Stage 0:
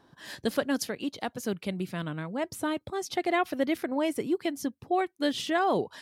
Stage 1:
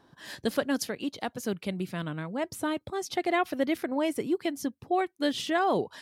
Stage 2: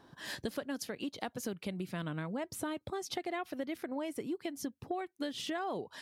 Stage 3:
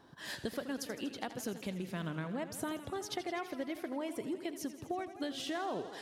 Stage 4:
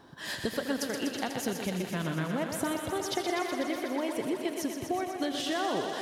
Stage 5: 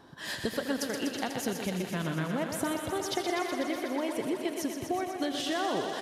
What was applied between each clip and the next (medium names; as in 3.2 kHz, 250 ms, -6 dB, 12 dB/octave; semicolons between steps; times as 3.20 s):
no audible change
compression 6:1, threshold -36 dBFS, peak gain reduction 14 dB; trim +1 dB
modulated delay 82 ms, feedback 77%, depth 116 cents, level -13 dB; trim -1 dB
thinning echo 123 ms, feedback 80%, high-pass 210 Hz, level -6.5 dB; trim +6 dB
resampled via 32 kHz